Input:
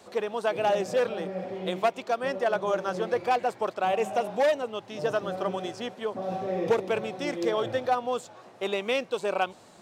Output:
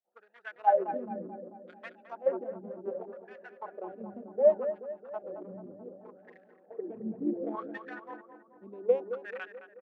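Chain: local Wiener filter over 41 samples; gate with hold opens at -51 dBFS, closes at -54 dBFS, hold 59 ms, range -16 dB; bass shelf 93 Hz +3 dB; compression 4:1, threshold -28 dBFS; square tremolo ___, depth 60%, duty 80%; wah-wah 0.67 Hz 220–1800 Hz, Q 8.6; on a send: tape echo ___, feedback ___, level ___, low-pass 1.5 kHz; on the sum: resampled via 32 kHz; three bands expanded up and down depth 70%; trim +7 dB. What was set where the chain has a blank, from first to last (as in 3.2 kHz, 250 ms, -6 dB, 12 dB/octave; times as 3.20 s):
0.59 Hz, 218 ms, 79%, -6 dB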